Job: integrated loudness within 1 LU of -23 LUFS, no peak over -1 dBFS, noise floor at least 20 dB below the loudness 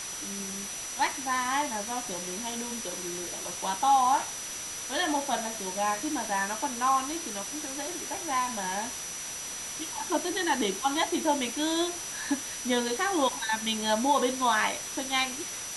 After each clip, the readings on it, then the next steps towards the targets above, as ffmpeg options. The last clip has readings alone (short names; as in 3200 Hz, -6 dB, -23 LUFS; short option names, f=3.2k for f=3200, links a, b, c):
steady tone 5900 Hz; tone level -38 dBFS; noise floor -38 dBFS; noise floor target -49 dBFS; loudness -29.0 LUFS; peak -13.5 dBFS; loudness target -23.0 LUFS
-> -af "bandreject=f=5.9k:w=30"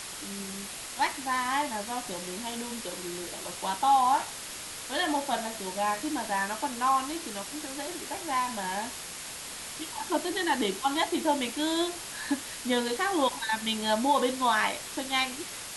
steady tone none; noise floor -40 dBFS; noise floor target -50 dBFS
-> -af "afftdn=nr=10:nf=-40"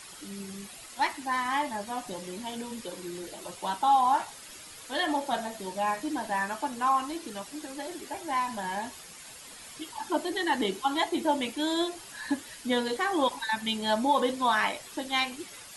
noise floor -47 dBFS; noise floor target -50 dBFS
-> -af "afftdn=nr=6:nf=-47"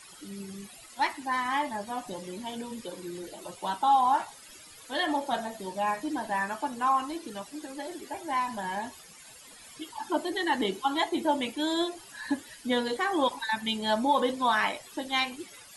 noise floor -51 dBFS; loudness -30.0 LUFS; peak -14.0 dBFS; loudness target -23.0 LUFS
-> -af "volume=7dB"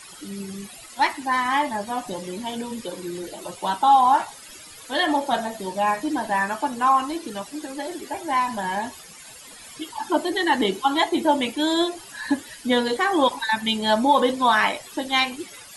loudness -23.0 LUFS; peak -7.0 dBFS; noise floor -44 dBFS